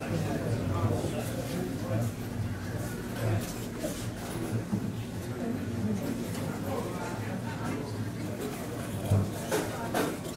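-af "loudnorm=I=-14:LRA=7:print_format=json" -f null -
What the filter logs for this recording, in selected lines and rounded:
"input_i" : "-33.1",
"input_tp" : "-14.5",
"input_lra" : "1.7",
"input_thresh" : "-43.1",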